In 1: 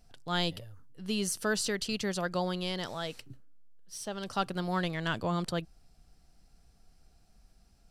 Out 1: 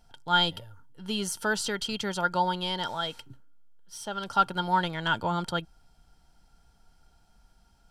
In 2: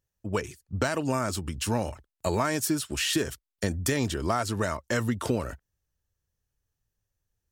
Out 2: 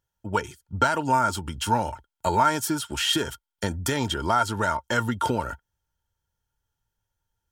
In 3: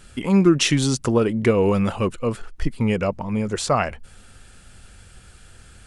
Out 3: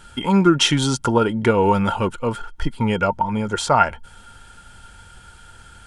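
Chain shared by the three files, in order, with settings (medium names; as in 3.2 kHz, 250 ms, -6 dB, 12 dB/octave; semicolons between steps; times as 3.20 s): small resonant body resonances 910/1400/3200 Hz, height 17 dB, ringing for 50 ms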